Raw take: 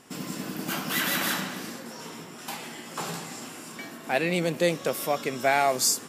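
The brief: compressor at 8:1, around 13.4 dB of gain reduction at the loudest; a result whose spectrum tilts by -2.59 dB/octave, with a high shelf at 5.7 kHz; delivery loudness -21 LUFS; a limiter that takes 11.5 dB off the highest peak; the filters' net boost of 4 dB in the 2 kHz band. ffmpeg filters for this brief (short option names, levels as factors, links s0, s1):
-af "equalizer=f=2000:t=o:g=4,highshelf=f=5700:g=8,acompressor=threshold=0.0355:ratio=8,volume=6.31,alimiter=limit=0.251:level=0:latency=1"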